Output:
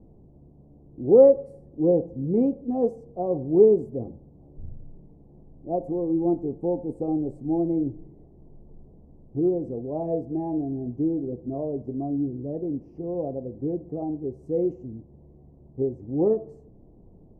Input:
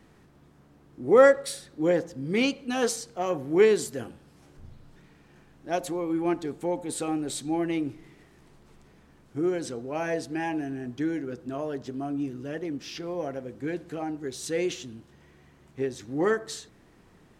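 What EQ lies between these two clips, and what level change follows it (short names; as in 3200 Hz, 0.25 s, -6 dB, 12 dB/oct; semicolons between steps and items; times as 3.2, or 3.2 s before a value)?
inverse Chebyshev low-pass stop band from 1400 Hz, stop band 40 dB; low shelf 88 Hz +9.5 dB; +3.0 dB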